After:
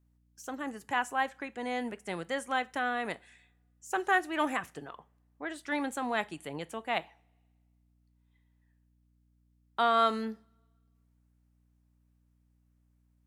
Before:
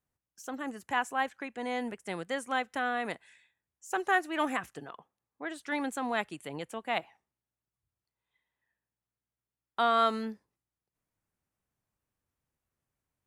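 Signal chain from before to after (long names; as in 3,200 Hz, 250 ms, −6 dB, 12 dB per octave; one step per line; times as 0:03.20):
coupled-rooms reverb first 0.3 s, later 1.7 s, from −27 dB, DRR 15.5 dB
mains hum 60 Hz, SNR 33 dB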